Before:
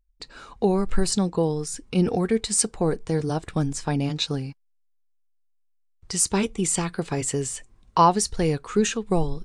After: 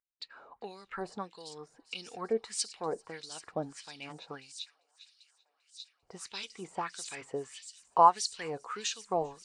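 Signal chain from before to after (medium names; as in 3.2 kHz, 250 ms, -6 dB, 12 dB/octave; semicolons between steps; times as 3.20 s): feedback echo behind a high-pass 395 ms, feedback 80%, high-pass 4.2 kHz, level -9 dB; LFO band-pass sine 1.6 Hz 620–4500 Hz; tape noise reduction on one side only decoder only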